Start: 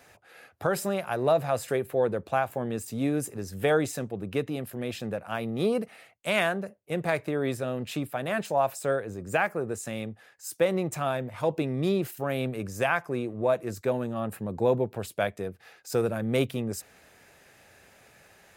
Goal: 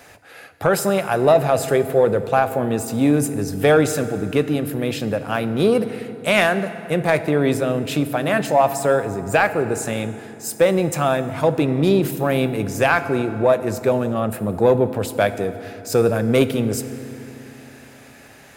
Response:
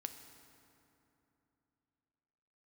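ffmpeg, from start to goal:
-filter_complex "[0:a]asoftclip=type=tanh:threshold=0.211,asplit=2[s0][s1];[1:a]atrim=start_sample=2205[s2];[s1][s2]afir=irnorm=-1:irlink=0,volume=2.66[s3];[s0][s3]amix=inputs=2:normalize=0,volume=1.12"

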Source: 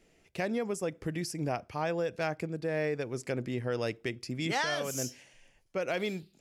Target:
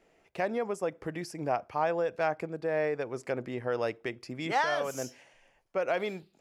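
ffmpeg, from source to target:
-af "equalizer=f=880:w=0.47:g=13.5,volume=0.422"

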